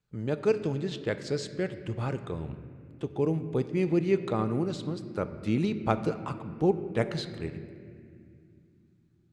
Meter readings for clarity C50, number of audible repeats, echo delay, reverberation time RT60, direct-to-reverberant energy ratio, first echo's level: 11.0 dB, no echo audible, no echo audible, 2.4 s, 9.5 dB, no echo audible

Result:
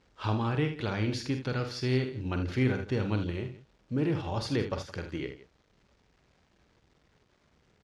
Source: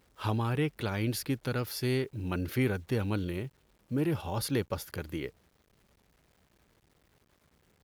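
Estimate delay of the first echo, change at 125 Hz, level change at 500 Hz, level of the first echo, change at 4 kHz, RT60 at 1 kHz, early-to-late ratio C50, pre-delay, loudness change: 47 ms, +1.5 dB, +1.0 dB, −8.0 dB, +1.0 dB, no reverb audible, no reverb audible, no reverb audible, +1.0 dB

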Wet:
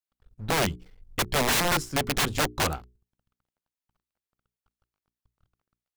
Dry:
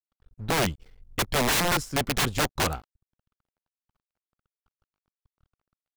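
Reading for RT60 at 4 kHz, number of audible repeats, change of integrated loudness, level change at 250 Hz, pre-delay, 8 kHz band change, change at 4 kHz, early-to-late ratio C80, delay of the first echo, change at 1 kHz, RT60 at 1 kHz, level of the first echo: no reverb audible, no echo audible, 0.0 dB, −1.0 dB, no reverb audible, 0.0 dB, 0.0 dB, no reverb audible, no echo audible, 0.0 dB, no reverb audible, no echo audible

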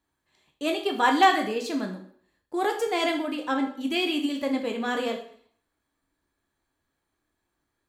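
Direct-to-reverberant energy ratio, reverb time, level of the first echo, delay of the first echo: 2.5 dB, 0.55 s, no echo audible, no echo audible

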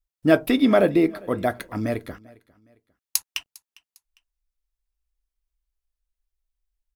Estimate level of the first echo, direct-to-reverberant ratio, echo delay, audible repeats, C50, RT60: −24.0 dB, no reverb audible, 403 ms, 2, no reverb audible, no reverb audible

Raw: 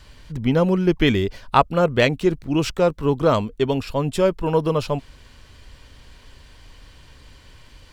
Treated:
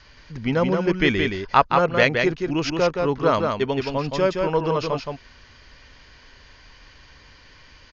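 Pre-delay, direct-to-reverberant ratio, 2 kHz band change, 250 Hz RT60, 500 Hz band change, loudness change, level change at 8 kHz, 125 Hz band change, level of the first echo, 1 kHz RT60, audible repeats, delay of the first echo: no reverb audible, no reverb audible, +3.5 dB, no reverb audible, −1.5 dB, −1.0 dB, −3.0 dB, −4.5 dB, −4.5 dB, no reverb audible, 1, 171 ms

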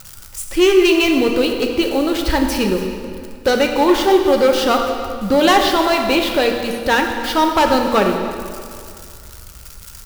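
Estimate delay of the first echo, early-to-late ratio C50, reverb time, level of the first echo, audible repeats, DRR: 295 ms, 4.5 dB, 2.3 s, −17.5 dB, 1, 2.5 dB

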